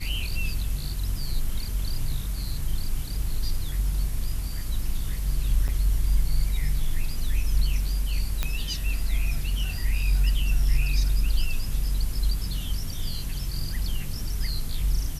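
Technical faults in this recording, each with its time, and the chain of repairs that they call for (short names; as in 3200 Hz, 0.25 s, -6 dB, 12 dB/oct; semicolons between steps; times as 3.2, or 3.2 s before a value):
5.68–5.69 gap 7.1 ms
8.43 pop -11 dBFS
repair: de-click; interpolate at 5.68, 7.1 ms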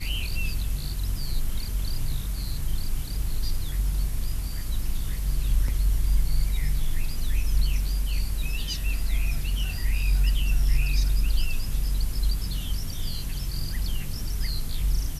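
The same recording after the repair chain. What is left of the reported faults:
none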